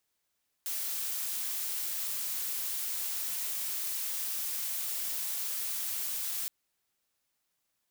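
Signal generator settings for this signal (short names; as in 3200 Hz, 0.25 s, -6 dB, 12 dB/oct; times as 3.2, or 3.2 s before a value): noise blue, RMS -34.5 dBFS 5.82 s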